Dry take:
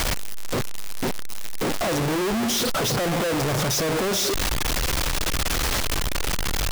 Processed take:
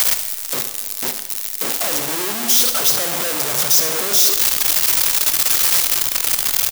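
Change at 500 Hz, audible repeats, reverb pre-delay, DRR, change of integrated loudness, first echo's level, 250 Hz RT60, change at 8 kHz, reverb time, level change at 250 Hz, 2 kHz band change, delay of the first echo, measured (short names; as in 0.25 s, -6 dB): -3.0 dB, 1, 6 ms, 7.0 dB, +9.0 dB, -12.5 dB, 1.5 s, +11.0 dB, 1.6 s, -6.5 dB, +2.5 dB, 71 ms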